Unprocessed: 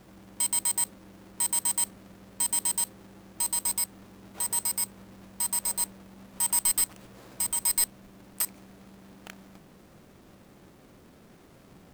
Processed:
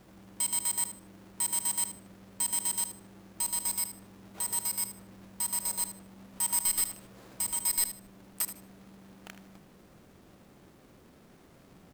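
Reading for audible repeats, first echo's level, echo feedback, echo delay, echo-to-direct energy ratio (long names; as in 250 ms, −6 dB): 2, −12.0 dB, 21%, 77 ms, −12.0 dB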